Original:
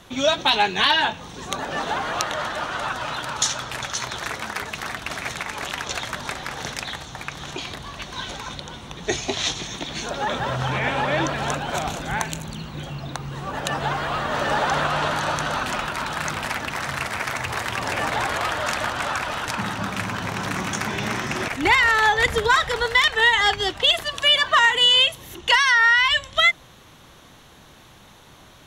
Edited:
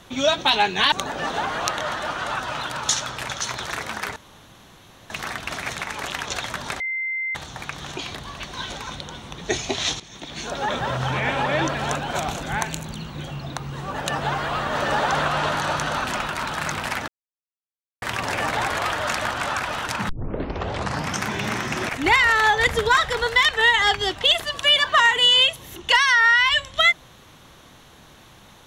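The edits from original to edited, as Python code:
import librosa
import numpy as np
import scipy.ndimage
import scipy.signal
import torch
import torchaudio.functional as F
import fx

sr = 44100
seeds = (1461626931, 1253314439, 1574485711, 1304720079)

y = fx.edit(x, sr, fx.cut(start_s=0.92, length_s=0.53),
    fx.insert_room_tone(at_s=4.69, length_s=0.94),
    fx.bleep(start_s=6.39, length_s=0.55, hz=2080.0, db=-23.5),
    fx.fade_in_from(start_s=9.59, length_s=0.57, floor_db=-16.5),
    fx.silence(start_s=16.67, length_s=0.94),
    fx.tape_start(start_s=19.68, length_s=1.13), tone=tone)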